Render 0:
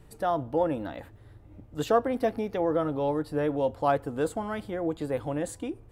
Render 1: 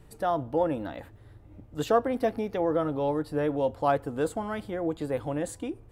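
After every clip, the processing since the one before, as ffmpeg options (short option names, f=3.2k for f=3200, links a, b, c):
-af anull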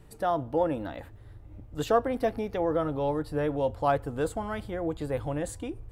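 -af "asubboost=boost=3.5:cutoff=110"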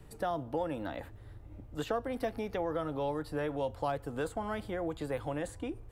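-filter_complex "[0:a]acrossover=split=180|800|2700[a][b][c][d];[a]acompressor=threshold=-46dB:ratio=4[e];[b]acompressor=threshold=-35dB:ratio=4[f];[c]acompressor=threshold=-39dB:ratio=4[g];[d]acompressor=threshold=-51dB:ratio=4[h];[e][f][g][h]amix=inputs=4:normalize=0"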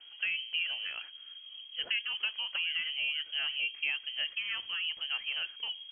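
-af "lowpass=f=2.8k:t=q:w=0.5098,lowpass=f=2.8k:t=q:w=0.6013,lowpass=f=2.8k:t=q:w=0.9,lowpass=f=2.8k:t=q:w=2.563,afreqshift=-3300"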